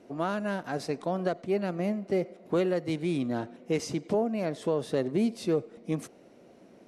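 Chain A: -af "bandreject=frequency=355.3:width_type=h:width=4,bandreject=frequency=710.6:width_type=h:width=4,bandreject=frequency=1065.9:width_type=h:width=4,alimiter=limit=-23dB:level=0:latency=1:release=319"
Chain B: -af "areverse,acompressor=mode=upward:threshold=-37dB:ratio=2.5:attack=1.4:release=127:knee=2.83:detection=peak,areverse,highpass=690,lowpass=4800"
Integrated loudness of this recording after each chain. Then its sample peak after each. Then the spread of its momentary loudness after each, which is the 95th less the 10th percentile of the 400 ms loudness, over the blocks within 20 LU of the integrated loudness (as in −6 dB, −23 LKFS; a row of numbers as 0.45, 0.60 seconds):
−34.5, −38.5 LKFS; −23.0, −20.5 dBFS; 5, 11 LU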